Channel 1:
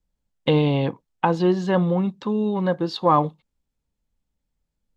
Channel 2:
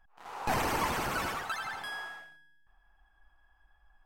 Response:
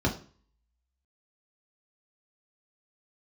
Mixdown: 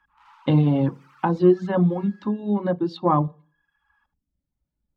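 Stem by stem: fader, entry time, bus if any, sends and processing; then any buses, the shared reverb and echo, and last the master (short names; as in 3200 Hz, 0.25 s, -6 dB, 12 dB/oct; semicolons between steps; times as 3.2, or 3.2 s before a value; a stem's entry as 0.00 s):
-4.5 dB, 0.00 s, send -15 dB, no echo send, dry
-9.0 dB, 0.00 s, no send, echo send -7 dB, compressor 2:1, threshold -44 dBFS, peak gain reduction 10 dB; overdrive pedal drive 27 dB, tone 3500 Hz, clips at -26.5 dBFS; rippled Chebyshev high-pass 850 Hz, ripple 3 dB; auto duck -14 dB, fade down 0.90 s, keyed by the first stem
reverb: on, RT60 0.40 s, pre-delay 3 ms
echo: echo 77 ms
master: reverb removal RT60 0.74 s; high shelf 2800 Hz -9 dB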